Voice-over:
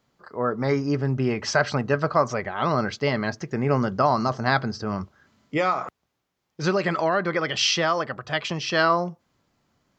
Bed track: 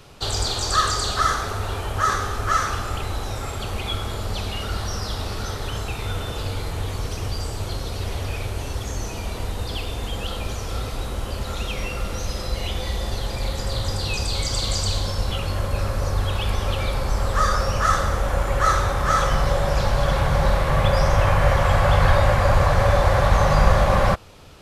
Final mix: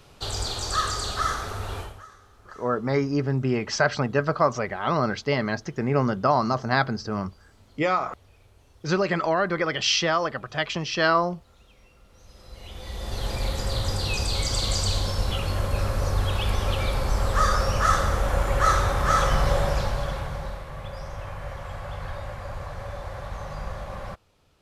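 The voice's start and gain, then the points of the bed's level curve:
2.25 s, −0.5 dB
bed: 0:01.81 −5.5 dB
0:02.08 −28.5 dB
0:12.06 −28.5 dB
0:13.27 −1.5 dB
0:19.60 −1.5 dB
0:20.69 −18 dB

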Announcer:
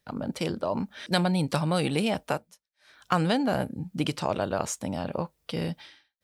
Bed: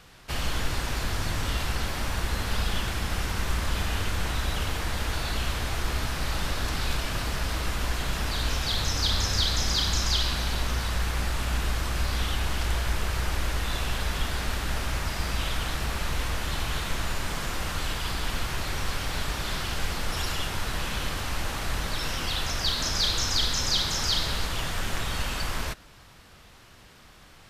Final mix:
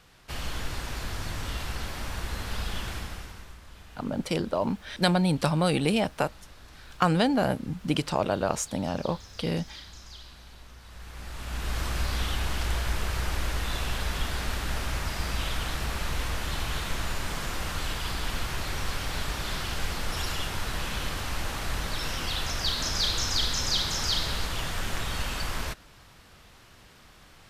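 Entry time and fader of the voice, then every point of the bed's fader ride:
3.90 s, +1.5 dB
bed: 0:02.96 −5 dB
0:03.59 −21 dB
0:10.80 −21 dB
0:11.80 −1.5 dB

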